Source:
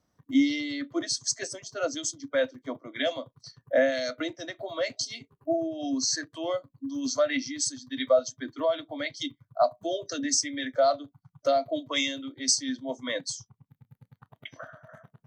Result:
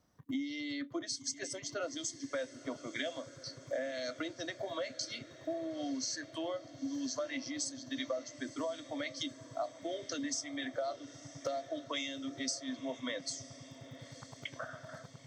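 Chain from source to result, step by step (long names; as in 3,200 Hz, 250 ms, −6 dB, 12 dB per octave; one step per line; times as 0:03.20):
downward compressor 6 to 1, threshold −37 dBFS, peak gain reduction 19 dB
on a send: feedback delay with all-pass diffusion 967 ms, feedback 59%, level −15 dB
on the sum: level +1 dB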